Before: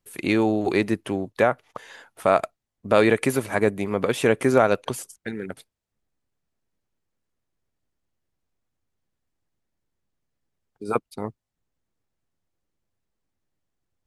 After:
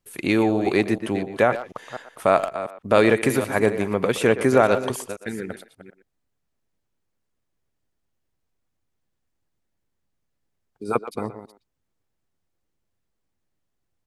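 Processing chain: chunks repeated in reverse 246 ms, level -12 dB; speakerphone echo 120 ms, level -12 dB; trim +1 dB

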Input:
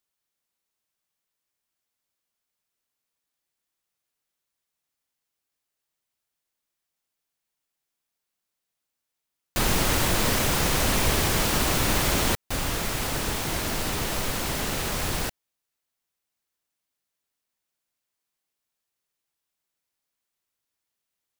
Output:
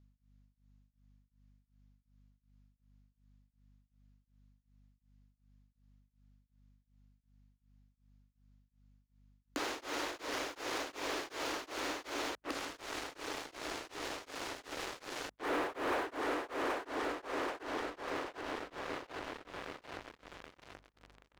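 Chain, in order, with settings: on a send: feedback echo behind a low-pass 780 ms, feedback 70%, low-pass 1.8 kHz, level -20 dB; on the sum: inverted gate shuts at -26 dBFS, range -31 dB; Chebyshev band-pass 280–7000 Hz, order 5; treble shelf 5.4 kHz -11 dB; waveshaping leveller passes 5; peak limiter -38.5 dBFS, peak gain reduction 11 dB; hum 50 Hz, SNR 24 dB; tremolo of two beating tones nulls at 2.7 Hz; trim +10.5 dB

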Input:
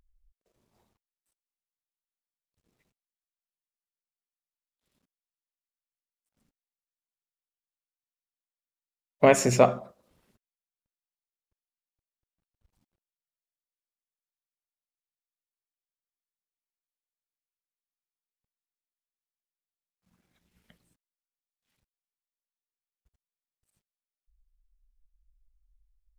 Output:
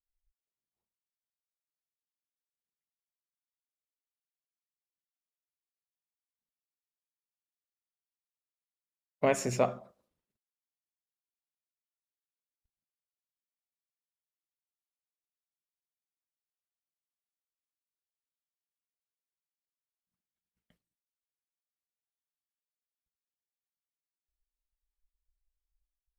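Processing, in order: expander -58 dBFS; trim -8.5 dB

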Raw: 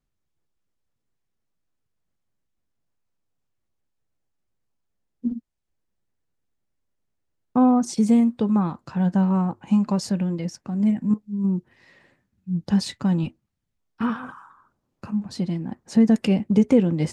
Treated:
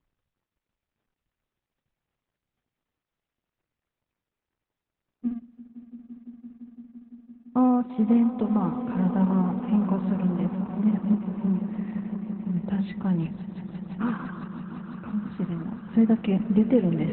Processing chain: companding laws mixed up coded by mu; Savitzky-Golay filter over 25 samples; hum notches 50/100/150/200 Hz; on a send: echo with a slow build-up 170 ms, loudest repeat 5, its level -14.5 dB; on the sum: trim -3.5 dB; Opus 8 kbps 48 kHz

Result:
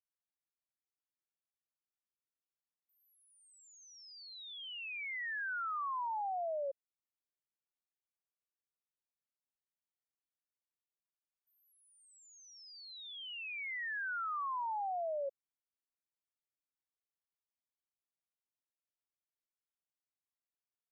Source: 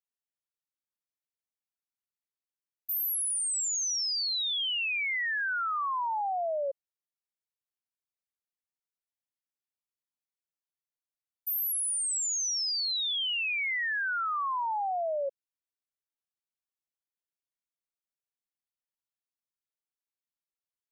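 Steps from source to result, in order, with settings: low-pass 1.9 kHz 12 dB/octave; trim -6.5 dB

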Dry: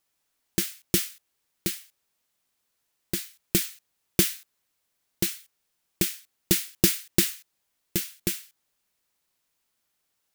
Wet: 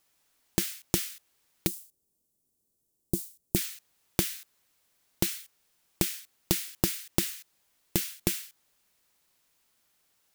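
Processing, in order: 1.67–3.56 s: FFT filter 370 Hz 0 dB, 1.8 kHz -30 dB, 8.3 kHz -5 dB; compression 16:1, threshold -28 dBFS, peak gain reduction 15 dB; trim +5.5 dB

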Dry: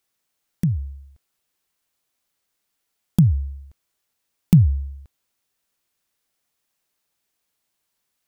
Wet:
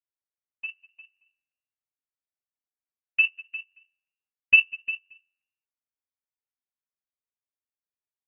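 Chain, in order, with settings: companding laws mixed up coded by mu; high-pass 75 Hz 24 dB/octave; bass shelf 400 Hz -3 dB; comb 5.9 ms, depth 96%; de-hum 161.3 Hz, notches 37; in parallel at -7 dB: Schmitt trigger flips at -13.5 dBFS; on the sum: multi-tap echo 190/201/352/577 ms -17/-12/-6/-15 dB; frequency inversion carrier 2.8 kHz; upward expansion 2.5:1, over -28 dBFS; trim -4 dB

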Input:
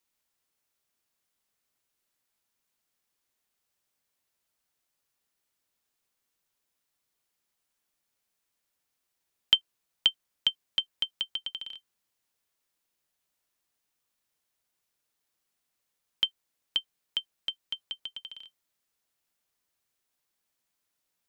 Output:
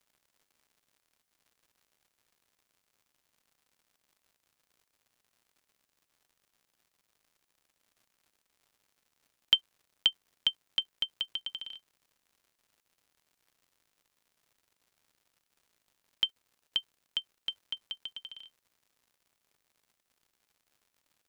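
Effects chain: crackle 150 per s -54 dBFS; trim -2 dB

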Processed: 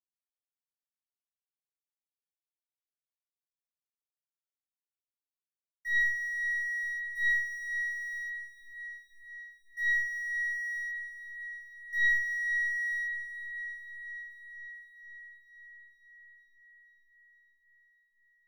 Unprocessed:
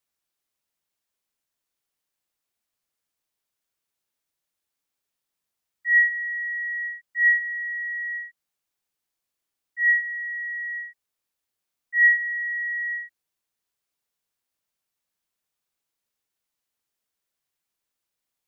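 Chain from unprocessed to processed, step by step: single-diode clipper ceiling -14.5 dBFS; low-pass 1.8 kHz 12 dB/octave; in parallel at -1 dB: compression, threshold -34 dBFS, peak gain reduction 14 dB; on the sum: crossover distortion -45.5 dBFS; on a send: echo that smears into a reverb 464 ms, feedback 69%, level -11 dB; on the sum: simulated room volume 890 m³, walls furnished, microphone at 1.6 m; trim -4 dB

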